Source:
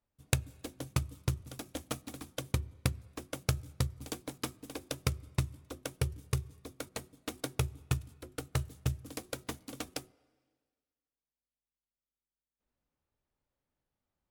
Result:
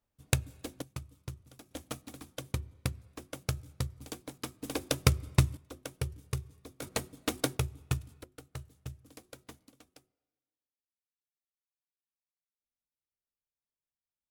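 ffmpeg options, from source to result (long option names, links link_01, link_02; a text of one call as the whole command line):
ffmpeg -i in.wav -af "asetnsamples=nb_out_samples=441:pad=0,asendcmd='0.82 volume volume -10dB;1.71 volume volume -2.5dB;4.62 volume volume 7.5dB;5.57 volume volume -2.5dB;6.82 volume volume 7.5dB;7.57 volume volume 0dB;8.24 volume volume -10.5dB;9.69 volume volume -19dB',volume=1.5dB" out.wav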